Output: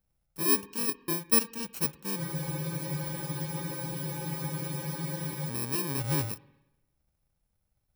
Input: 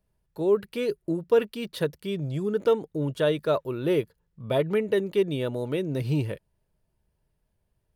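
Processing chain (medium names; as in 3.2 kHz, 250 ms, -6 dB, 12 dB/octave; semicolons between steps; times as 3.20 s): bit-reversed sample order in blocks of 64 samples; spring tank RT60 1 s, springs 49/59 ms, chirp 75 ms, DRR 18.5 dB; spectral freeze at 2.21 s, 3.27 s; trim -3.5 dB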